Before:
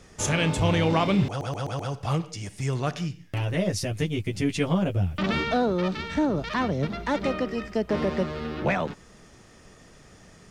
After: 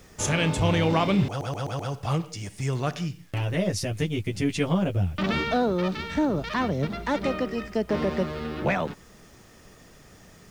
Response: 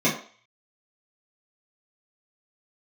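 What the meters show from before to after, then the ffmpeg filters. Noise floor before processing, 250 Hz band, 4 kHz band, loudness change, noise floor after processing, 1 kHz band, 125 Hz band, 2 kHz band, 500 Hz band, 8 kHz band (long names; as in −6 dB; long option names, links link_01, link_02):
−52 dBFS, 0.0 dB, 0.0 dB, 0.0 dB, −52 dBFS, 0.0 dB, 0.0 dB, 0.0 dB, 0.0 dB, 0.0 dB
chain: -af "acrusher=bits=9:mix=0:aa=0.000001"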